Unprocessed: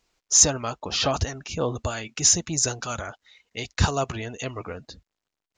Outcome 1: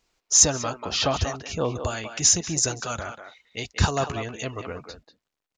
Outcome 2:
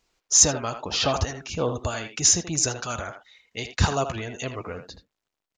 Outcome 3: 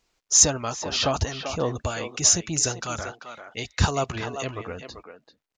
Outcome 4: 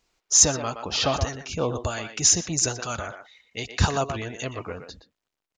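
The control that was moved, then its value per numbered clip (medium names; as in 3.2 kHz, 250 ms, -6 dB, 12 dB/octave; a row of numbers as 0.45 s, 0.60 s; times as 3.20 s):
speakerphone echo, time: 190 ms, 80 ms, 390 ms, 120 ms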